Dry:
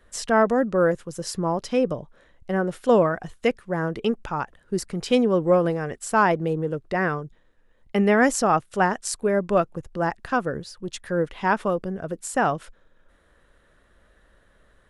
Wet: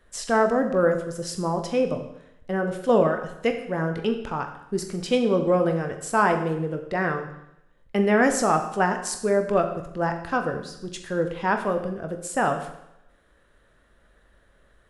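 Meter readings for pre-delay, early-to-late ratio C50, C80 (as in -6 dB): 17 ms, 9.0 dB, 10.5 dB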